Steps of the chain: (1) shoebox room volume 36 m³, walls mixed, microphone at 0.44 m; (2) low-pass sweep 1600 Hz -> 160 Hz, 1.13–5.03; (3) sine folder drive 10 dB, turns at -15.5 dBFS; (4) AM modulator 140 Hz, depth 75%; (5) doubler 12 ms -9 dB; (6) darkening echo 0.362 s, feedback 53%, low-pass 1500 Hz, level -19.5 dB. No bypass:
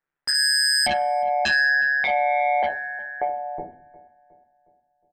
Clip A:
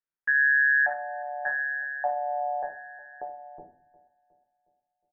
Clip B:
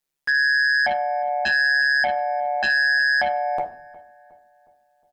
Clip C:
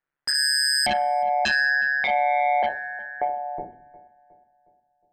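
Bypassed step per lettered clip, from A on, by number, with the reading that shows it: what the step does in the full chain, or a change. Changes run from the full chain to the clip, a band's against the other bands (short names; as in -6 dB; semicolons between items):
3, crest factor change +4.5 dB; 2, momentary loudness spread change -6 LU; 5, 250 Hz band +2.0 dB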